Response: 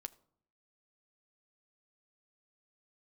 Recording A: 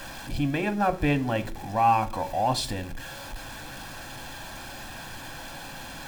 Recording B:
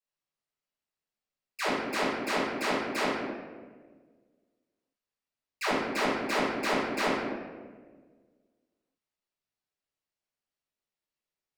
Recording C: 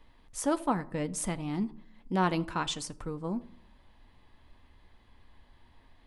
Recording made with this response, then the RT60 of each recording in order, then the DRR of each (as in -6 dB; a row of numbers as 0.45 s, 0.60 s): C; no single decay rate, 1.5 s, 0.65 s; 9.5 dB, -13.0 dB, 10.5 dB